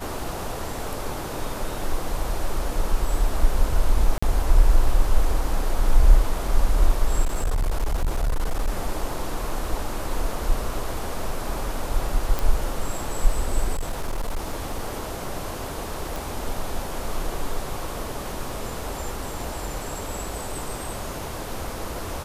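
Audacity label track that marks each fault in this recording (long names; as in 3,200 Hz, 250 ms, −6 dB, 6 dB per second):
4.180000	4.220000	drop-out 45 ms
7.240000	8.690000	clipping −18.5 dBFS
12.390000	12.390000	click
13.740000	14.930000	clipping −22 dBFS
16.160000	16.160000	click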